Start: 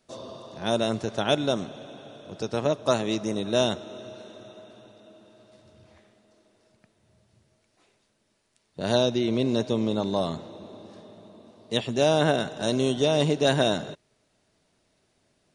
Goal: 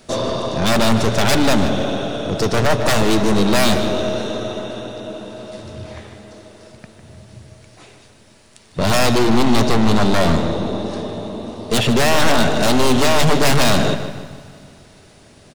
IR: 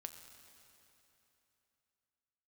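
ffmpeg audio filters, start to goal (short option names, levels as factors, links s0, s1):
-filter_complex "[0:a]aeval=exprs='0.422*sin(PI/2*5.62*val(0)/0.422)':c=same,aeval=exprs='(tanh(7.08*val(0)+0.3)-tanh(0.3))/7.08':c=same,asplit=2[s0][s1];[s1]adelay=152,lowpass=f=4500:p=1,volume=0.335,asplit=2[s2][s3];[s3]adelay=152,lowpass=f=4500:p=1,volume=0.48,asplit=2[s4][s5];[s5]adelay=152,lowpass=f=4500:p=1,volume=0.48,asplit=2[s6][s7];[s7]adelay=152,lowpass=f=4500:p=1,volume=0.48,asplit=2[s8][s9];[s9]adelay=152,lowpass=f=4500:p=1,volume=0.48[s10];[s0][s2][s4][s6][s8][s10]amix=inputs=6:normalize=0,asplit=2[s11][s12];[1:a]atrim=start_sample=2205,lowshelf=f=160:g=12[s13];[s12][s13]afir=irnorm=-1:irlink=0,volume=0.596[s14];[s11][s14]amix=inputs=2:normalize=0"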